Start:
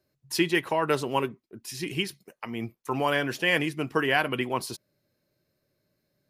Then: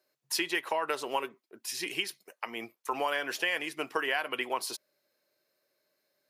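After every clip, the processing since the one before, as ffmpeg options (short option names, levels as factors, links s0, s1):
-af "highpass=530,acompressor=threshold=0.0355:ratio=5,volume=1.26"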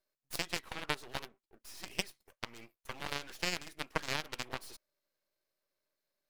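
-af "aeval=exprs='0.188*(cos(1*acos(clip(val(0)/0.188,-1,1)))-cos(1*PI/2))+0.0473*(cos(3*acos(clip(val(0)/0.188,-1,1)))-cos(3*PI/2))+0.015*(cos(7*acos(clip(val(0)/0.188,-1,1)))-cos(7*PI/2))':c=same,aeval=exprs='max(val(0),0)':c=same,volume=1.5"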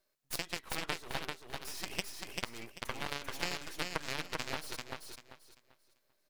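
-filter_complex "[0:a]acompressor=threshold=0.01:ratio=4,asplit=2[s0][s1];[s1]aecho=0:1:391|782|1173|1564:0.668|0.167|0.0418|0.0104[s2];[s0][s2]amix=inputs=2:normalize=0,volume=2.11"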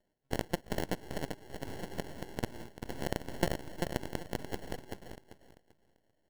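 -af "acrusher=samples=36:mix=1:aa=0.000001,volume=1.12"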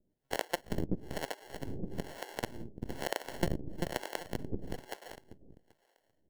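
-filter_complex "[0:a]acrossover=split=440[s0][s1];[s0]aeval=exprs='val(0)*(1-1/2+1/2*cos(2*PI*1.1*n/s))':c=same[s2];[s1]aeval=exprs='val(0)*(1-1/2-1/2*cos(2*PI*1.1*n/s))':c=same[s3];[s2][s3]amix=inputs=2:normalize=0,asplit=2[s4][s5];[s5]volume=33.5,asoftclip=hard,volume=0.0299,volume=0.299[s6];[s4][s6]amix=inputs=2:normalize=0,volume=1.5"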